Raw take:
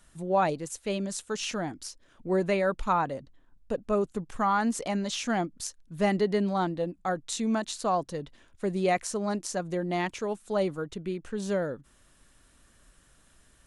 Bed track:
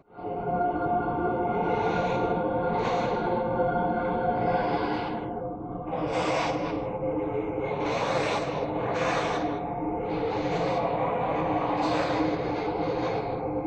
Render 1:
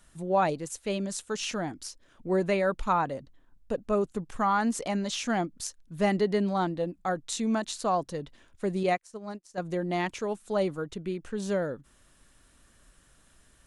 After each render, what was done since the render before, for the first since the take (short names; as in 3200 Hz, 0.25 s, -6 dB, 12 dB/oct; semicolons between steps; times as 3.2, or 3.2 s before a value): 8.83–9.58 upward expander 2.5:1, over -45 dBFS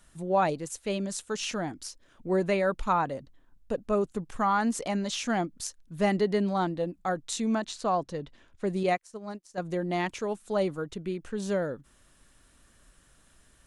7.55–8.67 air absorption 55 m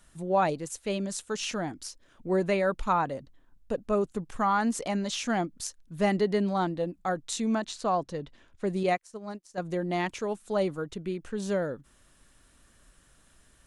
nothing audible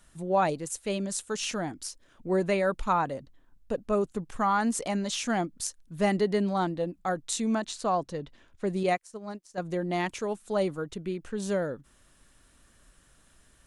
dynamic EQ 9400 Hz, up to +5 dB, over -55 dBFS, Q 1.3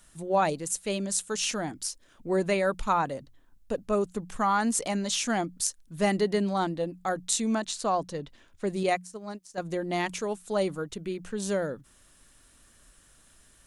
high shelf 3700 Hz +6 dB; notches 60/120/180 Hz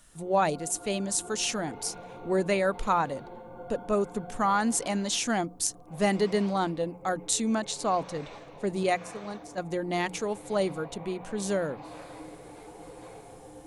add bed track -18 dB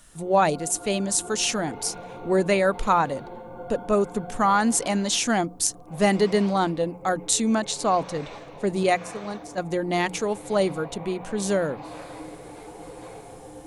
gain +5 dB